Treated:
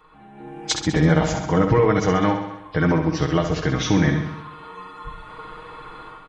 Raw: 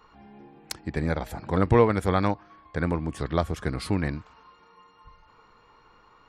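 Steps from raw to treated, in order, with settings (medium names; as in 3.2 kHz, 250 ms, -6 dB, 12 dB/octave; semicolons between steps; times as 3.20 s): knee-point frequency compression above 2.2 kHz 1.5:1; treble shelf 6.1 kHz +10.5 dB; comb 6.4 ms, depth 60%; level rider gain up to 15.5 dB; peak limiter -8.5 dBFS, peak gain reduction 7.5 dB; on a send: feedback delay 66 ms, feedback 59%, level -7 dB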